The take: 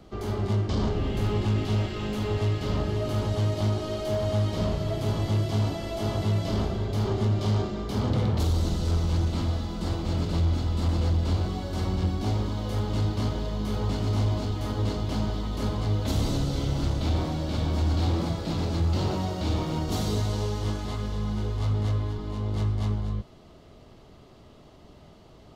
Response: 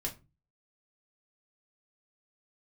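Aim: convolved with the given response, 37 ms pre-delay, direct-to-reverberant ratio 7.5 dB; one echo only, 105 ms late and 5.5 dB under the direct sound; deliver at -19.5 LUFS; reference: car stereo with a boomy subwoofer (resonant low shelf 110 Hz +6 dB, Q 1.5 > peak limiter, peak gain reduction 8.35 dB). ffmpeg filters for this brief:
-filter_complex "[0:a]aecho=1:1:105:0.531,asplit=2[s0][s1];[1:a]atrim=start_sample=2205,adelay=37[s2];[s1][s2]afir=irnorm=-1:irlink=0,volume=0.376[s3];[s0][s3]amix=inputs=2:normalize=0,lowshelf=f=110:t=q:w=1.5:g=6,volume=1.41,alimiter=limit=0.299:level=0:latency=1"

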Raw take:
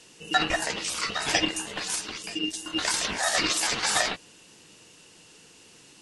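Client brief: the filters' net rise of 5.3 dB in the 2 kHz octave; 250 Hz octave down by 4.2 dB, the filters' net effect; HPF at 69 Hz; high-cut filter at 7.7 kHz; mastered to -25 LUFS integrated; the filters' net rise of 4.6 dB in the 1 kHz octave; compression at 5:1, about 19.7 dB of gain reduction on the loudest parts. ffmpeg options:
-af "highpass=69,lowpass=7700,equalizer=f=250:t=o:g=-6.5,equalizer=f=1000:t=o:g=5.5,equalizer=f=2000:t=o:g=5,acompressor=threshold=0.0126:ratio=5,volume=4.73"

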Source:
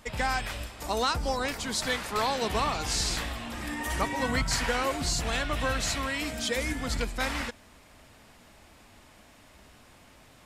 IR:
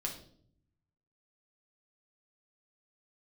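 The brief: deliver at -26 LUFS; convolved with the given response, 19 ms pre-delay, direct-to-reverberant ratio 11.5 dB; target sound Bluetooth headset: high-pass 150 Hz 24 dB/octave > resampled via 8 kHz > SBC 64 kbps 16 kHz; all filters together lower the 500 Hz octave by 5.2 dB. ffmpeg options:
-filter_complex "[0:a]equalizer=f=500:t=o:g=-6,asplit=2[s0][s1];[1:a]atrim=start_sample=2205,adelay=19[s2];[s1][s2]afir=irnorm=-1:irlink=0,volume=0.237[s3];[s0][s3]amix=inputs=2:normalize=0,highpass=f=150:w=0.5412,highpass=f=150:w=1.3066,aresample=8000,aresample=44100,volume=2" -ar 16000 -c:a sbc -b:a 64k

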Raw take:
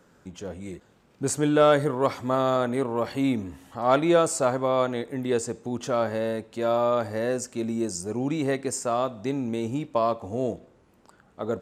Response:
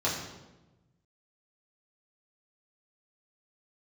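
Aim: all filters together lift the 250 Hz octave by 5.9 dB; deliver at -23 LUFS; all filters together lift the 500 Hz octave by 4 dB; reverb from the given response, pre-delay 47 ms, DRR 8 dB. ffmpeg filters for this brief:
-filter_complex "[0:a]equalizer=f=250:t=o:g=6,equalizer=f=500:t=o:g=3.5,asplit=2[s0][s1];[1:a]atrim=start_sample=2205,adelay=47[s2];[s1][s2]afir=irnorm=-1:irlink=0,volume=0.126[s3];[s0][s3]amix=inputs=2:normalize=0,volume=0.794"

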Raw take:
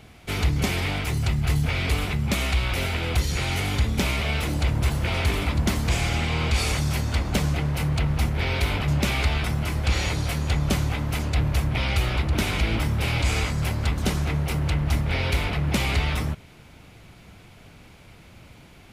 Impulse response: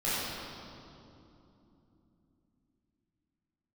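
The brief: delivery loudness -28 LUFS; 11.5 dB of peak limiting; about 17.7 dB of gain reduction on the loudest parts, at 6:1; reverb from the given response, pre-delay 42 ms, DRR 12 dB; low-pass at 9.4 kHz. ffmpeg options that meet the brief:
-filter_complex "[0:a]lowpass=9400,acompressor=threshold=0.0126:ratio=6,alimiter=level_in=5.31:limit=0.0631:level=0:latency=1,volume=0.188,asplit=2[s0][s1];[1:a]atrim=start_sample=2205,adelay=42[s2];[s1][s2]afir=irnorm=-1:irlink=0,volume=0.075[s3];[s0][s3]amix=inputs=2:normalize=0,volume=8.41"

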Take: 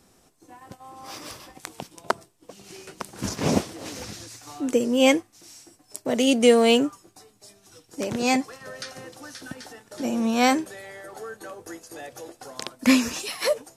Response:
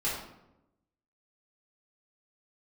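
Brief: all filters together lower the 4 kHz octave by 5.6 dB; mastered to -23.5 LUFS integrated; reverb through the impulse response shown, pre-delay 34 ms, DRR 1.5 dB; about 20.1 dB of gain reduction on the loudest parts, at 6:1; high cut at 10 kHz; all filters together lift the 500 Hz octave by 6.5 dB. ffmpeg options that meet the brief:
-filter_complex "[0:a]lowpass=10000,equalizer=f=500:t=o:g=7,equalizer=f=4000:t=o:g=-8.5,acompressor=threshold=0.0398:ratio=6,asplit=2[s0][s1];[1:a]atrim=start_sample=2205,adelay=34[s2];[s1][s2]afir=irnorm=-1:irlink=0,volume=0.355[s3];[s0][s3]amix=inputs=2:normalize=0,volume=2.66"

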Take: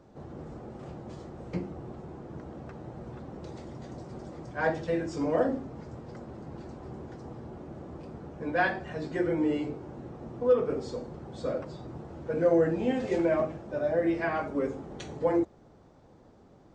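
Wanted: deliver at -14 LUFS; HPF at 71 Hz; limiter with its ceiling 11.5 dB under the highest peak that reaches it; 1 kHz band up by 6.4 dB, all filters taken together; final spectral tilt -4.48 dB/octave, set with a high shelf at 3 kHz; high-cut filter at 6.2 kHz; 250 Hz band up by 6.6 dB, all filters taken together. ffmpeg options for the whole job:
-af "highpass=71,lowpass=6200,equalizer=f=250:t=o:g=8.5,equalizer=f=1000:t=o:g=9,highshelf=f=3000:g=-5,volume=7.94,alimiter=limit=0.75:level=0:latency=1"

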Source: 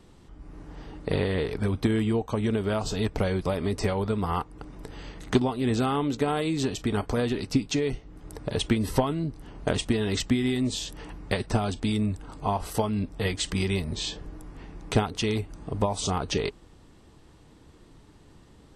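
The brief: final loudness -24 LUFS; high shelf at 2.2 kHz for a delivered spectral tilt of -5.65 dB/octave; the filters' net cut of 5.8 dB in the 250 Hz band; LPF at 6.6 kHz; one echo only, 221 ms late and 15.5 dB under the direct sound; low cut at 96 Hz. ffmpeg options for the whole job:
-af "highpass=96,lowpass=6600,equalizer=f=250:t=o:g=-7,highshelf=f=2200:g=-8.5,aecho=1:1:221:0.168,volume=2.51"

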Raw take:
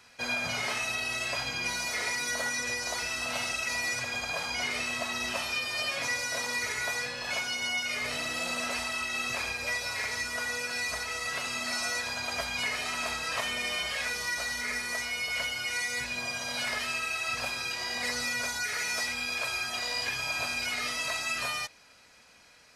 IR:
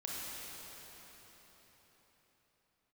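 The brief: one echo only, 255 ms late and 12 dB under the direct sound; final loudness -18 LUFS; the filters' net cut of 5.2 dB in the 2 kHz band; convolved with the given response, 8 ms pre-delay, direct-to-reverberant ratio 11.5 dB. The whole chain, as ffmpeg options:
-filter_complex "[0:a]equalizer=f=2000:t=o:g=-6.5,aecho=1:1:255:0.251,asplit=2[s0][s1];[1:a]atrim=start_sample=2205,adelay=8[s2];[s1][s2]afir=irnorm=-1:irlink=0,volume=0.211[s3];[s0][s3]amix=inputs=2:normalize=0,volume=5.62"

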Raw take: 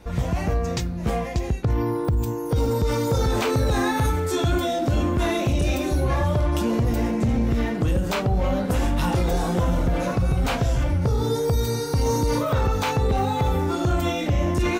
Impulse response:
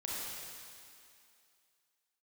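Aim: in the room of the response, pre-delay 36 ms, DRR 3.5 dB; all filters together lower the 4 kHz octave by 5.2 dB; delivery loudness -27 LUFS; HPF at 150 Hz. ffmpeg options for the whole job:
-filter_complex "[0:a]highpass=150,equalizer=f=4000:t=o:g=-6.5,asplit=2[s0][s1];[1:a]atrim=start_sample=2205,adelay=36[s2];[s1][s2]afir=irnorm=-1:irlink=0,volume=0.501[s3];[s0][s3]amix=inputs=2:normalize=0,volume=0.75"

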